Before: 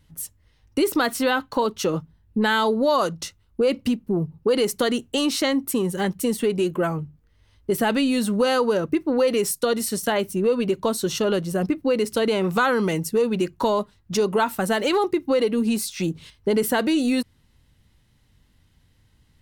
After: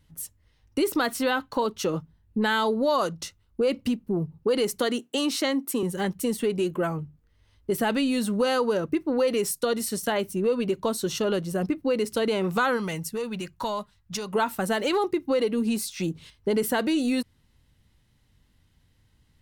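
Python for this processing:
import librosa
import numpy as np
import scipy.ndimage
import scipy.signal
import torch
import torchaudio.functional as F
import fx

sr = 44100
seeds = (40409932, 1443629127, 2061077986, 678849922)

y = fx.highpass(x, sr, hz=200.0, slope=24, at=(4.8, 5.83))
y = fx.peak_eq(y, sr, hz=350.0, db=fx.line((12.76, -8.0), (14.32, -14.5)), octaves=1.4, at=(12.76, 14.32), fade=0.02)
y = F.gain(torch.from_numpy(y), -3.5).numpy()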